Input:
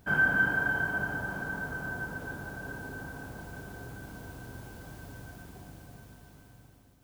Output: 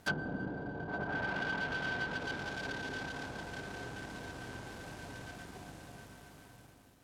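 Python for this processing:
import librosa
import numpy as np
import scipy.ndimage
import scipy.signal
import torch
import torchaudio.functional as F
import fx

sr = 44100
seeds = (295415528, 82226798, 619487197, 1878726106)

y = fx.dead_time(x, sr, dead_ms=0.16)
y = fx.env_lowpass_down(y, sr, base_hz=460.0, full_db=-27.0)
y = fx.low_shelf(y, sr, hz=190.0, db=-10.0)
y = y * librosa.db_to_amplitude(3.5)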